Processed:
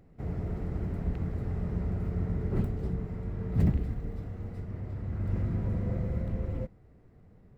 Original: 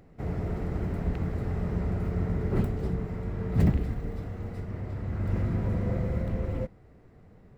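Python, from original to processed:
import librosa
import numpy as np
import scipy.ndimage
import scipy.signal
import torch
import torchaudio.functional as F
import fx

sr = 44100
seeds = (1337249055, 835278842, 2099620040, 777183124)

y = fx.low_shelf(x, sr, hz=330.0, db=5.5)
y = y * 10.0 ** (-7.0 / 20.0)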